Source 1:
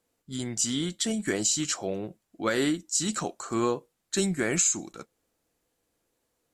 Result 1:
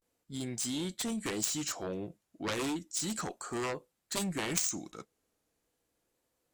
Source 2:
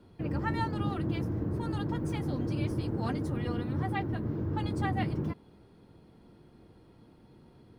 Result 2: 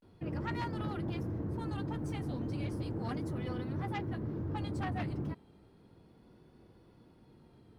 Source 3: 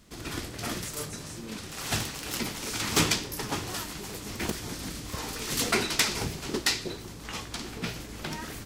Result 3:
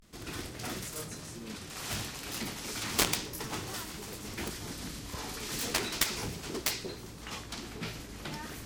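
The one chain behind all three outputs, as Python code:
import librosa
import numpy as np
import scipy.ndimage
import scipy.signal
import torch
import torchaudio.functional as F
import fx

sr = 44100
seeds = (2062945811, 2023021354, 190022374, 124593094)

y = fx.vibrato(x, sr, rate_hz=0.34, depth_cents=73.0)
y = fx.cheby_harmonics(y, sr, harmonics=(7,), levels_db=(-12,), full_scale_db=-6.5)
y = y * librosa.db_to_amplitude(-1.0)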